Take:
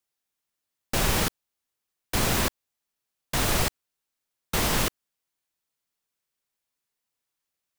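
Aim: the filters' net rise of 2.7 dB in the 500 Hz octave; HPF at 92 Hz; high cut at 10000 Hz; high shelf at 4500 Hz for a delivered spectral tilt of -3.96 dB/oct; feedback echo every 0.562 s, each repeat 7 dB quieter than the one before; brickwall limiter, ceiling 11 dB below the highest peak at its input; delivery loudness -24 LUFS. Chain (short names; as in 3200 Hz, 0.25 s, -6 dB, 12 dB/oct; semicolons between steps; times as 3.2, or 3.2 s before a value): HPF 92 Hz; LPF 10000 Hz; bell 500 Hz +3.5 dB; high shelf 4500 Hz -8 dB; limiter -25 dBFS; feedback echo 0.562 s, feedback 45%, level -7 dB; gain +14 dB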